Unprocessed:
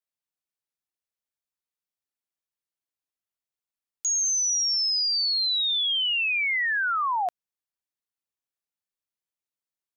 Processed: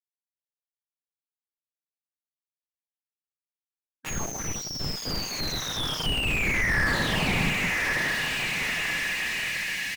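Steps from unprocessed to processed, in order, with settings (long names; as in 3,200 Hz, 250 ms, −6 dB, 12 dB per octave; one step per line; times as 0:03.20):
dynamic equaliser 1,200 Hz, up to −7 dB, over −42 dBFS, Q 2.9
reversed playback
upward compression, threshold −33 dBFS
reversed playback
auto-filter low-pass saw down 0.33 Hz 920–4,600 Hz
rectangular room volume 320 cubic metres, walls mixed, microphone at 4.5 metres
two-band tremolo in antiphase 3 Hz, depth 50%, crossover 2,100 Hz
fuzz pedal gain 34 dB, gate −38 dBFS
linear-phase brick-wall band-stop 260–1,600 Hz
comb filter 6.4 ms, depth 64%
hollow resonant body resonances 390/800 Hz, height 17 dB, ringing for 20 ms
on a send: feedback delay with all-pass diffusion 1,166 ms, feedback 50%, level −13.5 dB
on the sum: slew-rate limiting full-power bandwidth 57 Hz
level +6 dB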